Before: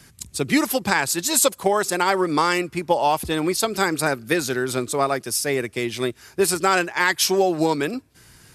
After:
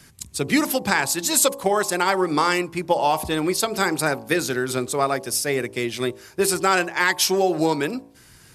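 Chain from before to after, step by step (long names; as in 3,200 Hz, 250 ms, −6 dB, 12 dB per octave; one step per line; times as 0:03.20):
hum removal 55.78 Hz, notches 20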